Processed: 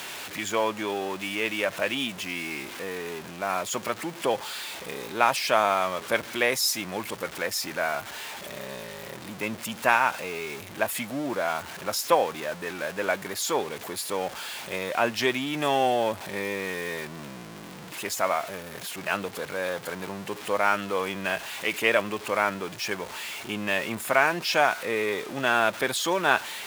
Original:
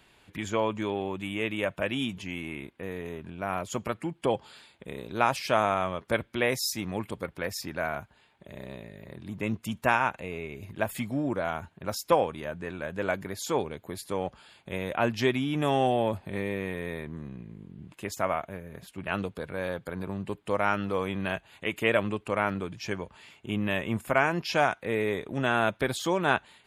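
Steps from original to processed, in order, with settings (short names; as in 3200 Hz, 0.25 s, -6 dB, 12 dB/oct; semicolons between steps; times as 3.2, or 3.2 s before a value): zero-crossing step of -35 dBFS; HPF 590 Hz 6 dB/oct; gain +4 dB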